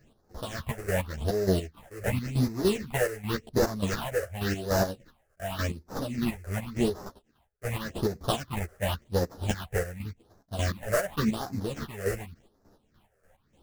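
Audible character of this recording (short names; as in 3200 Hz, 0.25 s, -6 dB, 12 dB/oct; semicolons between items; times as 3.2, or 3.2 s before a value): aliases and images of a low sample rate 2300 Hz, jitter 20%; phasing stages 6, 0.89 Hz, lowest notch 240–3000 Hz; chopped level 3.4 Hz, depth 65%, duty 40%; a shimmering, thickened sound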